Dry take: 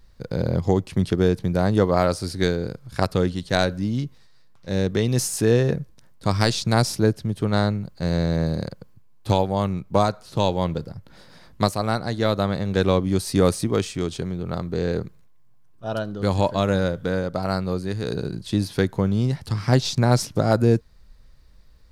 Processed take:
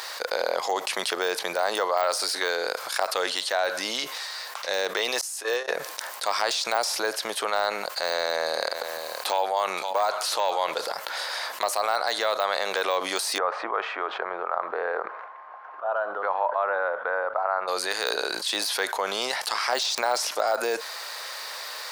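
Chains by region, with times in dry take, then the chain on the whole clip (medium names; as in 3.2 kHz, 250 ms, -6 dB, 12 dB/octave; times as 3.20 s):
5.21–5.68 s: high-pass 270 Hz 24 dB/octave + gate -19 dBFS, range -33 dB
7.96–10.92 s: upward compressor, threshold -28 dBFS + delay 522 ms -23 dB
13.38–17.68 s: block-companded coder 7-bit + low-pass 1.3 kHz 24 dB/octave + tilt EQ +4.5 dB/octave
whole clip: de-esser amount 80%; high-pass 660 Hz 24 dB/octave; level flattener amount 70%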